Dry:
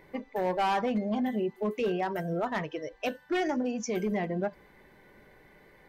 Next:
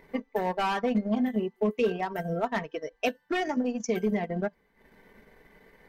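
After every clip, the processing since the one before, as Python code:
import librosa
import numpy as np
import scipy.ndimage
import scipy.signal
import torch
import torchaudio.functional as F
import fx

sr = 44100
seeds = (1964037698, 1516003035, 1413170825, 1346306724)

y = fx.transient(x, sr, attack_db=4, sustain_db=-12)
y = y + 0.44 * np.pad(y, (int(4.4 * sr / 1000.0), 0))[:len(y)]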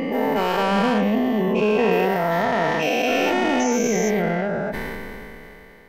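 y = fx.spec_dilate(x, sr, span_ms=480)
y = fx.sustainer(y, sr, db_per_s=20.0)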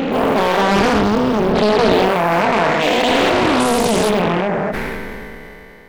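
y = fx.doppler_dist(x, sr, depth_ms=0.89)
y = y * 10.0 ** (6.0 / 20.0)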